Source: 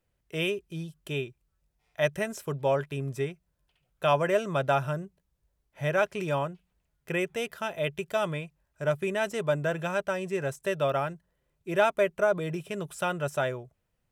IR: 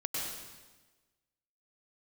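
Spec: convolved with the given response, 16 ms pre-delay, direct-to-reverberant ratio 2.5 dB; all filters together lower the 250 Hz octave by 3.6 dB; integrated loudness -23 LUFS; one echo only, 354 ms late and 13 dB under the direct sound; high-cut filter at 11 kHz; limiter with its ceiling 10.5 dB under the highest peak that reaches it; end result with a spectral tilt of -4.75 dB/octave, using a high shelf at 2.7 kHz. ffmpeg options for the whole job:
-filter_complex "[0:a]lowpass=11000,equalizer=f=250:t=o:g=-7,highshelf=f=2700:g=3.5,alimiter=limit=0.0891:level=0:latency=1,aecho=1:1:354:0.224,asplit=2[s0][s1];[1:a]atrim=start_sample=2205,adelay=16[s2];[s1][s2]afir=irnorm=-1:irlink=0,volume=0.473[s3];[s0][s3]amix=inputs=2:normalize=0,volume=2.66"

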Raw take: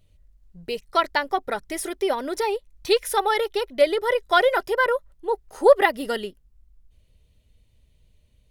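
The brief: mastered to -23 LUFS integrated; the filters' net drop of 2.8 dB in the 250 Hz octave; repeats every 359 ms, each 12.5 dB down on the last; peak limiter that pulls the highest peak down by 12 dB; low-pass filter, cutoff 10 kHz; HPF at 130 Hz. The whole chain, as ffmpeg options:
-af "highpass=130,lowpass=10000,equalizer=f=250:t=o:g=-4.5,alimiter=limit=0.188:level=0:latency=1,aecho=1:1:359|718|1077:0.237|0.0569|0.0137,volume=1.5"

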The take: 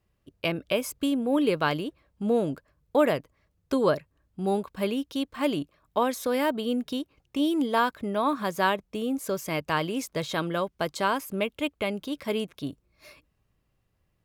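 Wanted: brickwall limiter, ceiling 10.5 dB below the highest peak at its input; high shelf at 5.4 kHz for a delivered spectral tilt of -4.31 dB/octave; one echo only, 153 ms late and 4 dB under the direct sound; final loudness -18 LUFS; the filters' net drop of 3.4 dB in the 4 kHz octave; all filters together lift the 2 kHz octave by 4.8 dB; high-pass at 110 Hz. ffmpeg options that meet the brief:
-af "highpass=110,equalizer=f=2000:t=o:g=9,equalizer=f=4000:t=o:g=-7.5,highshelf=f=5400:g=-7,alimiter=limit=0.119:level=0:latency=1,aecho=1:1:153:0.631,volume=3.55"

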